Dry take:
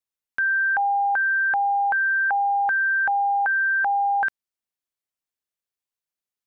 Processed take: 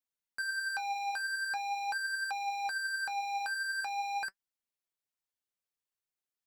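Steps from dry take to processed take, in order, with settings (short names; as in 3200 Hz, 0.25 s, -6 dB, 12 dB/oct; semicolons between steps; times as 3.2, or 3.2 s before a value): overloaded stage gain 30.5 dB; flange 0.44 Hz, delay 3.5 ms, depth 8.1 ms, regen +62%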